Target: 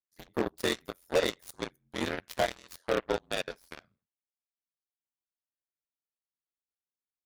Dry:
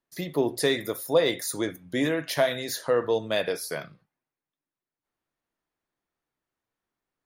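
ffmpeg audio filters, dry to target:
ffmpeg -i in.wav -af "aeval=exprs='0.299*(cos(1*acos(clip(val(0)/0.299,-1,1)))-cos(1*PI/2))+0.0266*(cos(2*acos(clip(val(0)/0.299,-1,1)))-cos(2*PI/2))+0.00473*(cos(3*acos(clip(val(0)/0.299,-1,1)))-cos(3*PI/2))+0.00266*(cos(5*acos(clip(val(0)/0.299,-1,1)))-cos(5*PI/2))+0.0473*(cos(7*acos(clip(val(0)/0.299,-1,1)))-cos(7*PI/2))':channel_layout=same,aeval=exprs='val(0)*sin(2*PI*44*n/s)':channel_layout=same,aeval=exprs='0.168*(abs(mod(val(0)/0.168+3,4)-2)-1)':channel_layout=same,volume=-1dB" out.wav

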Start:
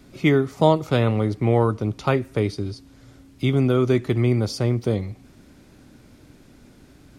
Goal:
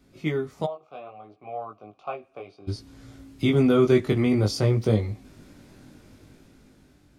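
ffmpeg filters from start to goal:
ffmpeg -i in.wav -filter_complex "[0:a]flanger=delay=18.5:depth=2.5:speed=0.62,asplit=3[link_01][link_02][link_03];[link_01]afade=type=out:start_time=0.65:duration=0.02[link_04];[link_02]asplit=3[link_05][link_06][link_07];[link_05]bandpass=frequency=730:width_type=q:width=8,volume=0dB[link_08];[link_06]bandpass=frequency=1090:width_type=q:width=8,volume=-6dB[link_09];[link_07]bandpass=frequency=2440:width_type=q:width=8,volume=-9dB[link_10];[link_08][link_09][link_10]amix=inputs=3:normalize=0,afade=type=in:start_time=0.65:duration=0.02,afade=type=out:start_time=2.67:duration=0.02[link_11];[link_03]afade=type=in:start_time=2.67:duration=0.02[link_12];[link_04][link_11][link_12]amix=inputs=3:normalize=0,dynaudnorm=framelen=390:gausssize=7:maxgain=13dB,volume=-6.5dB" out.wav

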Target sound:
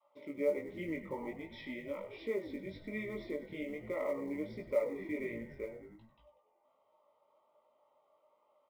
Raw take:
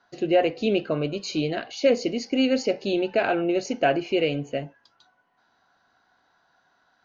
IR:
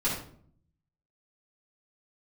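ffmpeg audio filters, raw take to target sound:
-filter_complex "[0:a]asplit=3[link_01][link_02][link_03];[link_01]bandpass=frequency=730:width_type=q:width=8,volume=0dB[link_04];[link_02]bandpass=frequency=1090:width_type=q:width=8,volume=-6dB[link_05];[link_03]bandpass=frequency=2440:width_type=q:width=8,volume=-9dB[link_06];[link_04][link_05][link_06]amix=inputs=3:normalize=0,adynamicequalizer=threshold=0.00891:dfrequency=330:dqfactor=0.86:tfrequency=330:tqfactor=0.86:attack=5:release=100:ratio=0.375:range=2.5:mode=boostabove:tftype=bell,asetrate=35721,aresample=44100,equalizer=frequency=100:width_type=o:width=0.33:gain=-4,equalizer=frequency=500:width_type=o:width=0.33:gain=-10,equalizer=frequency=1000:width_type=o:width=0.33:gain=5,asplit=2[link_07][link_08];[link_08]asplit=6[link_09][link_10][link_11][link_12][link_13][link_14];[link_09]adelay=96,afreqshift=-84,volume=-12.5dB[link_15];[link_10]adelay=192,afreqshift=-168,volume=-17.5dB[link_16];[link_11]adelay=288,afreqshift=-252,volume=-22.6dB[link_17];[link_12]adelay=384,afreqshift=-336,volume=-27.6dB[link_18];[link_13]adelay=480,afreqshift=-420,volume=-32.6dB[link_19];[link_14]adelay=576,afreqshift=-504,volume=-37.7dB[link_20];[link_15][link_16][link_17][link_18][link_19][link_20]amix=inputs=6:normalize=0[link_21];[link_07][link_21]amix=inputs=2:normalize=0,acompressor=threshold=-48dB:ratio=1.5,asuperstop=centerf=1700:order=12:qfactor=6.8,acrusher=bits=8:mode=log:mix=0:aa=0.000001,flanger=delay=17.5:depth=3.7:speed=1.3,volume=6dB"

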